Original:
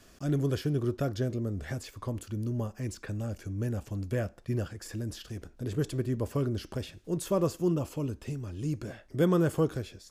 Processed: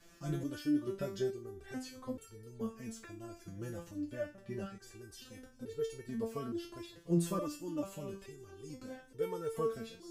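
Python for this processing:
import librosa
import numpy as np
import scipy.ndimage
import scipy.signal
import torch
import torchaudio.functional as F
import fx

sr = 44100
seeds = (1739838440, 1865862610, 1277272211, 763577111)

y = fx.high_shelf(x, sr, hz=6700.0, db=-9.0, at=(3.98, 4.97))
y = fx.echo_swing(y, sr, ms=1168, ratio=1.5, feedback_pct=48, wet_db=-23)
y = fx.resonator_held(y, sr, hz=2.3, low_hz=170.0, high_hz=450.0)
y = y * librosa.db_to_amplitude(8.0)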